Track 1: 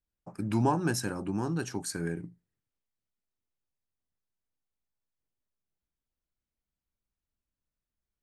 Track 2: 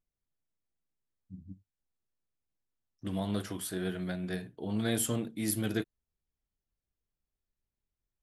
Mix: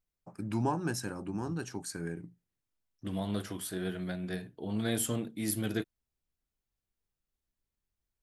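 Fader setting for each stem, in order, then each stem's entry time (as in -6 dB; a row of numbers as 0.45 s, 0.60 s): -4.5 dB, -1.0 dB; 0.00 s, 0.00 s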